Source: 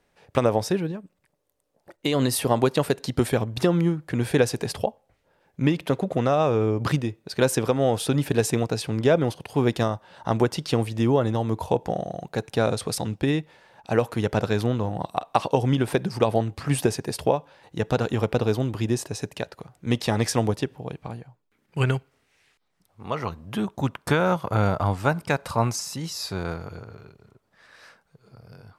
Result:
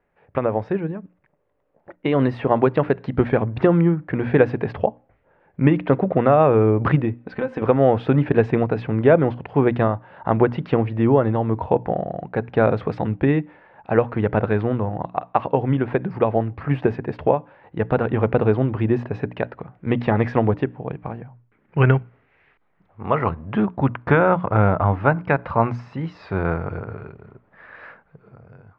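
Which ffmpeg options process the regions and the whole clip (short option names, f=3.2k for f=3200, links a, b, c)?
-filter_complex "[0:a]asettb=1/sr,asplit=3[a][b][c];[a]atrim=end=7.184[d];[b]atrim=start=7.18:end=7.62,asetpts=PTS-STARTPTS,afade=t=in:d=0.004:c=qsin,afade=t=out:st=0.436:d=0.004:c=qsin,aecho=1:1:3.9:0.63,atrim=end_sample=19404,acompressor=threshold=-28dB:ratio=4:attack=3.2:release=140:knee=1:detection=peak[e];[c]atrim=start=7.616[f];[d][e]acrossfade=d=0.004:c1=hsin:c2=qsin[g];[g][f]acrossfade=d=0.004:c1=qsin:c2=hsin,lowpass=f=2.2k:w=0.5412,lowpass=f=2.2k:w=1.3066,dynaudnorm=f=160:g=9:m=11.5dB,bandreject=f=60:t=h:w=6,bandreject=f=120:t=h:w=6,bandreject=f=180:t=h:w=6,bandreject=f=240:t=h:w=6,bandreject=f=300:t=h:w=6,volume=-1dB"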